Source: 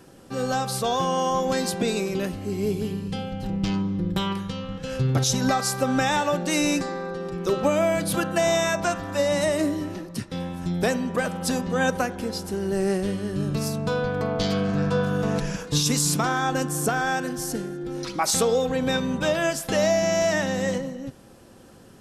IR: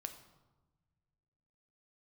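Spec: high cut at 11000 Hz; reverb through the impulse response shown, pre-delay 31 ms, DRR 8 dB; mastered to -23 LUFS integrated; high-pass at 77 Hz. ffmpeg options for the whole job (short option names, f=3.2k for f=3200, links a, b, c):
-filter_complex "[0:a]highpass=77,lowpass=11k,asplit=2[a][b];[1:a]atrim=start_sample=2205,adelay=31[c];[b][c]afir=irnorm=-1:irlink=0,volume=-5dB[d];[a][d]amix=inputs=2:normalize=0,volume=1dB"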